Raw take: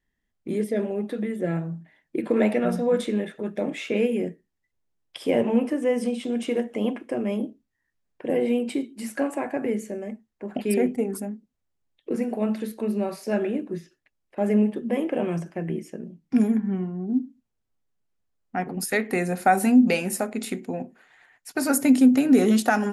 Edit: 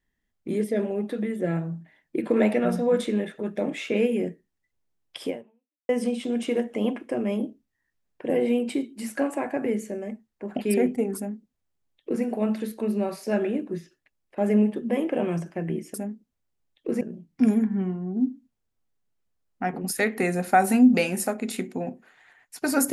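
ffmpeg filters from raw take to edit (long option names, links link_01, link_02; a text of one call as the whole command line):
ffmpeg -i in.wav -filter_complex "[0:a]asplit=4[link_01][link_02][link_03][link_04];[link_01]atrim=end=5.89,asetpts=PTS-STARTPTS,afade=type=out:start_time=5.26:duration=0.63:curve=exp[link_05];[link_02]atrim=start=5.89:end=15.942,asetpts=PTS-STARTPTS,afade=type=in:duration=0.004:curve=hsin[link_06];[link_03]atrim=start=11.158:end=12.232[link_07];[link_04]atrim=start=15.938[link_08];[link_05][link_06]concat=n=2:v=0:a=1[link_09];[link_09][link_07]acrossfade=duration=0.004:curve1=hsin:curve2=hsin[link_10];[link_10][link_08]acrossfade=duration=0.004:curve1=hsin:curve2=hsin" out.wav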